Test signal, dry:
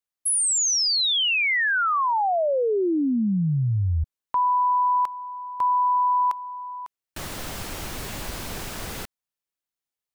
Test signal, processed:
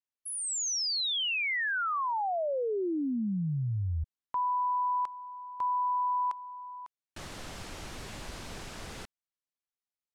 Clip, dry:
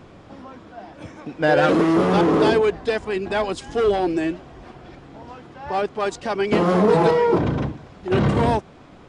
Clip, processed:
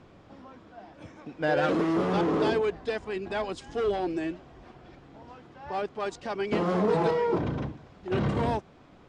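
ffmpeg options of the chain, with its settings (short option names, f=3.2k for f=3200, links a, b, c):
-af "lowpass=8.2k,volume=-8.5dB"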